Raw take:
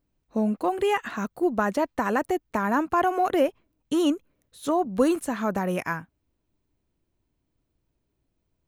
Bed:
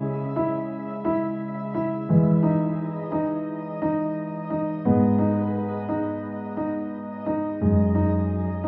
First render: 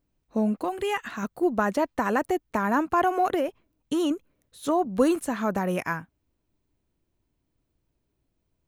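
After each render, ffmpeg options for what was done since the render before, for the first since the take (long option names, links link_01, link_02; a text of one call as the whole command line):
ffmpeg -i in.wav -filter_complex "[0:a]asettb=1/sr,asplit=3[link_01][link_02][link_03];[link_01]atrim=end=0.644[link_04];[link_02]atrim=start=0.64:end=1.23,asetpts=PTS-STARTPTS,afade=type=in:duration=0.004:curve=qsin,afade=type=out:start_time=0.586:duration=0.004:curve=qsin,equalizer=frequency=500:width=0.42:gain=-5[link_05];[link_03]atrim=start=1.226[link_06];[link_04][link_05]acrossfade=duration=0.004:curve1=hsin:curve2=qsin[link_07];[link_07][link_06]acrossfade=duration=0.004:curve1=qsin:curve2=hsin,asettb=1/sr,asplit=3[link_08][link_09][link_10];[link_08]atrim=end=3.344[link_11];[link_09]atrim=start=3.34:end=4.11,asetpts=PTS-STARTPTS,afade=type=in:duration=0.004:curve=qsin,afade=type=out:start_time=0.766:duration=0.004:curve=qsin,acompressor=threshold=-21dB:ratio=6:attack=3.2:release=140:knee=1:detection=peak[link_12];[link_10]atrim=start=4.106[link_13];[link_11][link_12]acrossfade=duration=0.004:curve1=hsin:curve2=qsin[link_14];[link_14][link_13]acrossfade=duration=0.004:curve1=qsin:curve2=hsin" out.wav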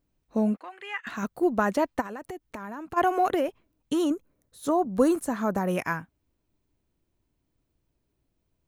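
ffmpeg -i in.wav -filter_complex "[0:a]asettb=1/sr,asplit=3[link_01][link_02][link_03];[link_01]atrim=end=0.574[link_04];[link_02]atrim=start=0.57:end=1.07,asetpts=PTS-STARTPTS,afade=type=in:duration=0.004:curve=qsin,afade=type=out:start_time=0.496:duration=0.004:curve=qsin,bandpass=frequency=1900:width_type=q:width=1.9[link_05];[link_03]atrim=start=1.066[link_06];[link_04][link_05]acrossfade=duration=0.004:curve1=hsin:curve2=qsin[link_07];[link_07][link_06]acrossfade=duration=0.004:curve1=qsin:curve2=hsin,asplit=3[link_08][link_09][link_10];[link_08]afade=type=out:start_time=2:duration=0.02[link_11];[link_09]acompressor=threshold=-34dB:ratio=8:attack=3.2:release=140:knee=1:detection=peak,afade=type=in:start_time=2:duration=0.02,afade=type=out:start_time=2.96:duration=0.02[link_12];[link_10]afade=type=in:start_time=2.96:duration=0.02[link_13];[link_11][link_12][link_13]amix=inputs=3:normalize=0,asettb=1/sr,asplit=3[link_14][link_15][link_16];[link_14]atrim=end=4.044[link_17];[link_15]atrim=start=4.04:end=5.68,asetpts=PTS-STARTPTS,afade=type=in:duration=0.004:curve=qsin,afade=type=out:start_time=1.636:duration=0.004:curve=qsin,equalizer=frequency=2800:width=1.2:gain=-7.5[link_18];[link_16]atrim=start=5.676[link_19];[link_17][link_18]acrossfade=duration=0.004:curve1=hsin:curve2=qsin[link_20];[link_20][link_19]acrossfade=duration=0.004:curve1=qsin:curve2=hsin" out.wav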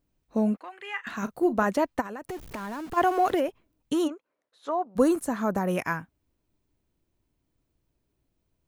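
ffmpeg -i in.wav -filter_complex "[0:a]asettb=1/sr,asplit=3[link_01][link_02][link_03];[link_01]atrim=end=0.814[link_04];[link_02]atrim=start=0.81:end=1.67,asetpts=PTS-STARTPTS,afade=type=in:duration=0.004:curve=qsin,afade=type=out:start_time=0.856:duration=0.004:curve=qsin,asplit=2[link_05][link_06];[link_06]adelay=37,volume=-13.5dB[link_07];[link_05][link_07]amix=inputs=2:normalize=0,atrim=end_sample=37926[link_08];[link_03]atrim=start=1.666[link_09];[link_04][link_08]acrossfade=duration=0.004:curve1=hsin:curve2=qsin[link_10];[link_10][link_09]acrossfade=duration=0.004:curve1=qsin:curve2=hsin,asettb=1/sr,asplit=3[link_11][link_12][link_13];[link_11]atrim=end=2.294[link_14];[link_12]atrim=start=2.29:end=3.4,asetpts=PTS-STARTPTS,afade=type=in:duration=0.004:curve=qsin,afade=type=out:start_time=1.106:duration=0.004:curve=qsin,aeval=exprs='val(0)+0.5*0.0112*sgn(val(0))':channel_layout=same[link_15];[link_13]atrim=start=3.396[link_16];[link_14][link_15]acrossfade=duration=0.004:curve1=hsin:curve2=qsin[link_17];[link_17][link_16]acrossfade=duration=0.004:curve1=qsin:curve2=hsin,asplit=3[link_18][link_19][link_20];[link_18]afade=type=out:start_time=4.07:duration=0.02[link_21];[link_19]highpass=610,lowpass=3100,afade=type=in:start_time=4.07:duration=0.02,afade=type=out:start_time=4.95:duration=0.02[link_22];[link_20]afade=type=in:start_time=4.95:duration=0.02[link_23];[link_21][link_22][link_23]amix=inputs=3:normalize=0" out.wav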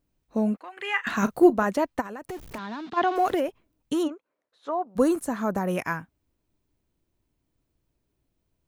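ffmpeg -i in.wav -filter_complex "[0:a]asettb=1/sr,asplit=3[link_01][link_02][link_03];[link_01]atrim=end=2.584[link_04];[link_02]atrim=start=2.58:end=3.16,asetpts=PTS-STARTPTS,afade=type=in:duration=0.004:curve=qsin,afade=type=out:start_time=0.576:duration=0.004:curve=qsin,highpass=180,equalizer=frequency=230:width_type=q:width=4:gain=4,equalizer=frequency=520:width_type=q:width=4:gain=-8,equalizer=frequency=3700:width_type=q:width=4:gain=10,lowpass=frequency=5400:width=0.5412,lowpass=frequency=5400:width=1.3066[link_05];[link_03]atrim=start=3.156[link_06];[link_04][link_05]acrossfade=duration=0.004:curve1=hsin:curve2=qsin[link_07];[link_07][link_06]acrossfade=duration=0.004:curve1=qsin:curve2=hsin,asettb=1/sr,asplit=3[link_08][link_09][link_10];[link_08]atrim=end=4.034[link_11];[link_09]atrim=start=4.03:end=4.87,asetpts=PTS-STARTPTS,afade=type=in:duration=0.004:curve=qsin,afade=type=out:start_time=0.836:duration=0.004:curve=qsin,lowpass=frequency=3900:poles=1[link_12];[link_10]atrim=start=4.866[link_13];[link_11][link_12]acrossfade=duration=0.004:curve1=hsin:curve2=qsin[link_14];[link_14][link_13]acrossfade=duration=0.004:curve1=qsin:curve2=hsin,asplit=3[link_15][link_16][link_17];[link_15]atrim=end=0.772[link_18];[link_16]atrim=start=0.768:end=1.502,asetpts=PTS-STARTPTS,volume=7.5dB[link_19];[link_17]atrim=start=1.498[link_20];[link_18][link_19]acrossfade=duration=0.004:curve1=hsin:curve2=hsin[link_21];[link_21][link_20]acrossfade=duration=0.004:curve1=hsin:curve2=hsin" out.wav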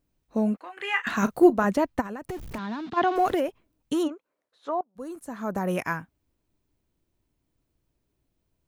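ffmpeg -i in.wav -filter_complex "[0:a]asettb=1/sr,asplit=3[link_01][link_02][link_03];[link_01]atrim=end=0.584[link_04];[link_02]atrim=start=0.58:end=1.02,asetpts=PTS-STARTPTS,afade=type=in:duration=0.004:curve=qsin,afade=type=out:start_time=0.436:duration=0.004:curve=qsin,asplit=2[link_05][link_06];[link_06]adelay=23,volume=-9dB[link_07];[link_05][link_07]amix=inputs=2:normalize=0,atrim=end_sample=19404[link_08];[link_03]atrim=start=1.016[link_09];[link_04][link_08]acrossfade=duration=0.004:curve1=hsin:curve2=qsin[link_10];[link_10][link_09]acrossfade=duration=0.004:curve1=qsin:curve2=hsin,asettb=1/sr,asplit=3[link_11][link_12][link_13];[link_11]atrim=end=1.644[link_14];[link_12]atrim=start=1.64:end=3.32,asetpts=PTS-STARTPTS,afade=type=in:duration=0.004:curve=qsin,afade=type=out:start_time=1.676:duration=0.004:curve=qsin,bass=frequency=250:gain=7,treble=frequency=4000:gain=-1[link_15];[link_13]atrim=start=3.316[link_16];[link_14][link_15]acrossfade=duration=0.004:curve1=hsin:curve2=qsin[link_17];[link_17][link_16]acrossfade=duration=0.004:curve1=qsin:curve2=hsin,asplit=2[link_18][link_19];[link_18]atrim=end=4.81,asetpts=PTS-STARTPTS,afade=type=out:start_time=4.806:duration=0.004:curve=hsin:silence=0.0794328[link_20];[link_19]atrim=start=4.81,asetpts=PTS-STARTPTS,afade=type=in:duration=0.85:curve=qua:silence=0.0794328[link_21];[link_20][link_21]concat=n=2:v=0:a=1" out.wav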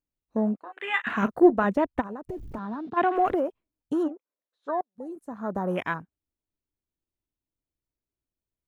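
ffmpeg -i in.wav -af "afwtdn=0.0158,equalizer=frequency=140:width_type=o:width=0.89:gain=-3" out.wav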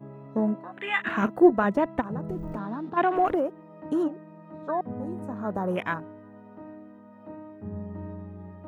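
ffmpeg -i in.wav -i bed.wav -filter_complex "[1:a]volume=-16.5dB[link_01];[0:a][link_01]amix=inputs=2:normalize=0" out.wav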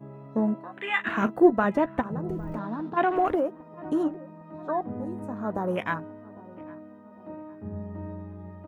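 ffmpeg -i in.wav -filter_complex "[0:a]asplit=2[link_01][link_02];[link_02]adelay=13,volume=-13.5dB[link_03];[link_01][link_03]amix=inputs=2:normalize=0,asplit=2[link_04][link_05];[link_05]adelay=806,lowpass=frequency=1100:poles=1,volume=-20.5dB,asplit=2[link_06][link_07];[link_07]adelay=806,lowpass=frequency=1100:poles=1,volume=0.52,asplit=2[link_08][link_09];[link_09]adelay=806,lowpass=frequency=1100:poles=1,volume=0.52,asplit=2[link_10][link_11];[link_11]adelay=806,lowpass=frequency=1100:poles=1,volume=0.52[link_12];[link_04][link_06][link_08][link_10][link_12]amix=inputs=5:normalize=0" out.wav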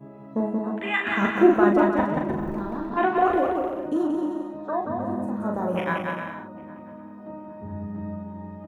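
ffmpeg -i in.wav -filter_complex "[0:a]asplit=2[link_01][link_02];[link_02]adelay=40,volume=-4dB[link_03];[link_01][link_03]amix=inputs=2:normalize=0,aecho=1:1:180|306|394.2|455.9|499.2:0.631|0.398|0.251|0.158|0.1" out.wav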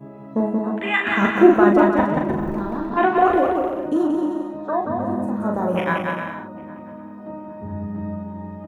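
ffmpeg -i in.wav -af "volume=4.5dB,alimiter=limit=-1dB:level=0:latency=1" out.wav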